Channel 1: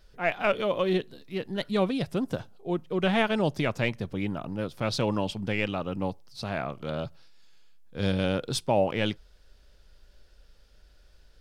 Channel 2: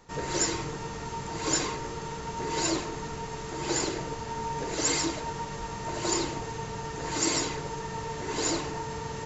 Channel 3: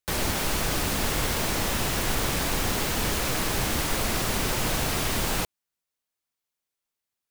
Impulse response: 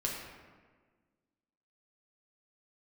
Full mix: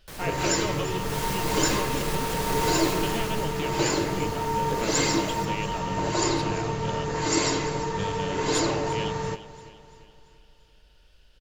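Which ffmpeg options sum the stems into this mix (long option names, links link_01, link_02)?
-filter_complex "[0:a]equalizer=frequency=2900:width=3.5:gain=11.5,volume=-1dB,asplit=2[link_01][link_02];[link_02]volume=-23.5dB[link_03];[1:a]highshelf=frequency=6800:gain=-9,adelay=100,volume=1dB,asplit=3[link_04][link_05][link_06];[link_05]volume=-5.5dB[link_07];[link_06]volume=-12.5dB[link_08];[2:a]aeval=exprs='0.0794*(abs(mod(val(0)/0.0794+3,4)-2)-1)':channel_layout=same,volume=-6.5dB,afade=type=in:start_time=0.89:duration=0.4:silence=0.316228,afade=type=out:start_time=3.11:duration=0.43:silence=0.281838,asplit=3[link_09][link_10][link_11];[link_10]volume=-5dB[link_12];[link_11]volume=-11dB[link_13];[link_01][link_09]amix=inputs=2:normalize=0,acompressor=threshold=-31dB:ratio=6,volume=0dB[link_14];[3:a]atrim=start_sample=2205[link_15];[link_07][link_12]amix=inputs=2:normalize=0[link_16];[link_16][link_15]afir=irnorm=-1:irlink=0[link_17];[link_03][link_08][link_13]amix=inputs=3:normalize=0,aecho=0:1:342|684|1026|1368|1710|2052:1|0.46|0.212|0.0973|0.0448|0.0206[link_18];[link_04][link_14][link_17][link_18]amix=inputs=4:normalize=0"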